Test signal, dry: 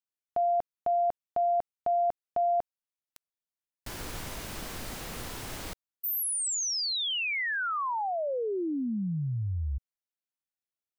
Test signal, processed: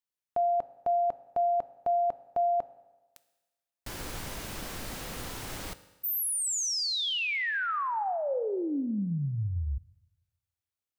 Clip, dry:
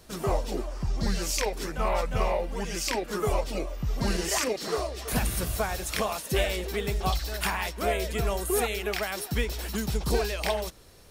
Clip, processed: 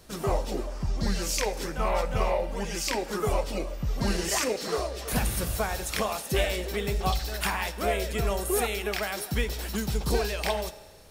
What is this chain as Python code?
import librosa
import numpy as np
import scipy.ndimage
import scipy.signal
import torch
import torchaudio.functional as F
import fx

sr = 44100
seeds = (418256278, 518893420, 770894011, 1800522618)

y = fx.rev_fdn(x, sr, rt60_s=1.2, lf_ratio=0.9, hf_ratio=1.0, size_ms=11.0, drr_db=12.5)